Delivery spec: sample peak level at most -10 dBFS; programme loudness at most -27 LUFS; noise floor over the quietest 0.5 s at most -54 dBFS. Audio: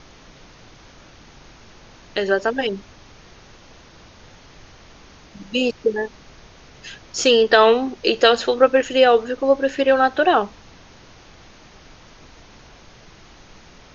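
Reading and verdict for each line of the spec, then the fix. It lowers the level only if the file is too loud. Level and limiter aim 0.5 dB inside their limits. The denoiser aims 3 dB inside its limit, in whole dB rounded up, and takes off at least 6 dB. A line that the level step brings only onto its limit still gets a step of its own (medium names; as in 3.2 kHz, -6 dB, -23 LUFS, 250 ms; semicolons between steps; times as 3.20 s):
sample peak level -1.5 dBFS: fail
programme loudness -18.0 LUFS: fail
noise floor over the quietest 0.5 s -46 dBFS: fail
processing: trim -9.5 dB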